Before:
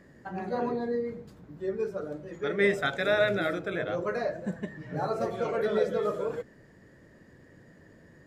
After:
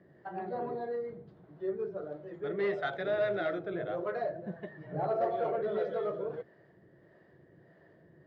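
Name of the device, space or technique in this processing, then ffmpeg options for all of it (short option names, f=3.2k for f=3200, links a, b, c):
guitar amplifier with harmonic tremolo: -filter_complex "[0:a]asettb=1/sr,asplit=3[a][b][c];[a]atrim=end=4.834[d];[b]atrim=start=4.83:end=5.56,asetpts=PTS-STARTPTS,afade=t=in:d=0.004:c=qsin,afade=t=out:st=0.726:d=0.004:c=qsin,equalizer=f=690:t=o:w=1.3:g=5[e];[c]atrim=start=5.556[f];[d][e]acrossfade=d=0.004:c1=hsin:c2=qsin[g];[g][f]acrossfade=d=0.004:c1=qsin:c2=hsin,acrossover=split=420[h][i];[h]aeval=exprs='val(0)*(1-0.5/2+0.5/2*cos(2*PI*1.6*n/s))':c=same[j];[i]aeval=exprs='val(0)*(1-0.5/2-0.5/2*cos(2*PI*1.6*n/s))':c=same[k];[j][k]amix=inputs=2:normalize=0,asoftclip=type=tanh:threshold=-23.5dB,highpass=100,equalizer=f=150:t=q:w=4:g=4,equalizer=f=250:t=q:w=4:g=-8,equalizer=f=360:t=q:w=4:g=7,equalizer=f=680:t=q:w=4:g=8,equalizer=f=2.5k:t=q:w=4:g=-6,lowpass=f=3.8k:w=0.5412,lowpass=f=3.8k:w=1.3066,volume=-4dB"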